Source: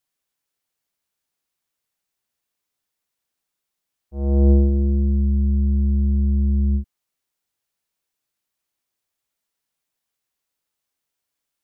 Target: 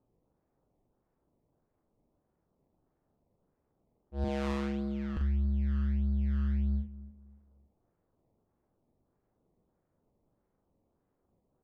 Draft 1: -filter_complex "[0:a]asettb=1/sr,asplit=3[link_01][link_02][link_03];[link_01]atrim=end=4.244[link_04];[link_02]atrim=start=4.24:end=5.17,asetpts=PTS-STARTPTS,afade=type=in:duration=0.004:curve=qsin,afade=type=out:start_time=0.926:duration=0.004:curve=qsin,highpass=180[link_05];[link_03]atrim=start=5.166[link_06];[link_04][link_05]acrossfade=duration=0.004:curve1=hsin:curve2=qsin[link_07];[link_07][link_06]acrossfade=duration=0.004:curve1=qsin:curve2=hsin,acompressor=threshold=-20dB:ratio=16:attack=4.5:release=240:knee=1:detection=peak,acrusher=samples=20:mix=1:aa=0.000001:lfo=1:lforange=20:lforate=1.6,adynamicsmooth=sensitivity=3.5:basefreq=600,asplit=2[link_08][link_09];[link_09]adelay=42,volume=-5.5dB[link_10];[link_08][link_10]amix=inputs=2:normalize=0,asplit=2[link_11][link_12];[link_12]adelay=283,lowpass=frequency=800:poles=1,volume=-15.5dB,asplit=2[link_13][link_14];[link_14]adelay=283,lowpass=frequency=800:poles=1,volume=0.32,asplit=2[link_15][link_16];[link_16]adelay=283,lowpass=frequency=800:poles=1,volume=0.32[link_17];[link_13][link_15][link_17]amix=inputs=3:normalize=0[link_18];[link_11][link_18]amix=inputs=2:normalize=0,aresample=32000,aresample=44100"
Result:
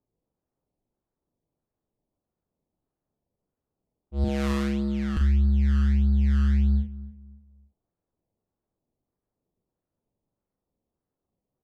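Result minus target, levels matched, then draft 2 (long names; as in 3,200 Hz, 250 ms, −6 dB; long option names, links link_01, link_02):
1,000 Hz band −4.0 dB
-filter_complex "[0:a]asettb=1/sr,asplit=3[link_01][link_02][link_03];[link_01]atrim=end=4.244[link_04];[link_02]atrim=start=4.24:end=5.17,asetpts=PTS-STARTPTS,afade=type=in:duration=0.004:curve=qsin,afade=type=out:start_time=0.926:duration=0.004:curve=qsin,highpass=180[link_05];[link_03]atrim=start=5.166[link_06];[link_04][link_05]acrossfade=duration=0.004:curve1=hsin:curve2=qsin[link_07];[link_07][link_06]acrossfade=duration=0.004:curve1=qsin:curve2=hsin,acompressor=threshold=-20dB:ratio=16:attack=4.5:release=240:knee=1:detection=peak,tiltshelf=frequency=770:gain=-9,acrusher=samples=20:mix=1:aa=0.000001:lfo=1:lforange=20:lforate=1.6,adynamicsmooth=sensitivity=3.5:basefreq=600,asplit=2[link_08][link_09];[link_09]adelay=42,volume=-5.5dB[link_10];[link_08][link_10]amix=inputs=2:normalize=0,asplit=2[link_11][link_12];[link_12]adelay=283,lowpass=frequency=800:poles=1,volume=-15.5dB,asplit=2[link_13][link_14];[link_14]adelay=283,lowpass=frequency=800:poles=1,volume=0.32,asplit=2[link_15][link_16];[link_16]adelay=283,lowpass=frequency=800:poles=1,volume=0.32[link_17];[link_13][link_15][link_17]amix=inputs=3:normalize=0[link_18];[link_11][link_18]amix=inputs=2:normalize=0,aresample=32000,aresample=44100"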